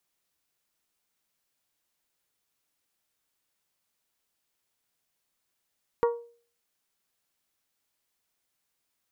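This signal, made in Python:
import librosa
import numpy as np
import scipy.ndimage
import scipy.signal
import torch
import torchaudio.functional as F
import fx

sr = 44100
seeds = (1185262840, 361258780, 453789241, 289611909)

y = fx.strike_glass(sr, length_s=0.89, level_db=-18.0, body='bell', hz=471.0, decay_s=0.44, tilt_db=6, modes=5)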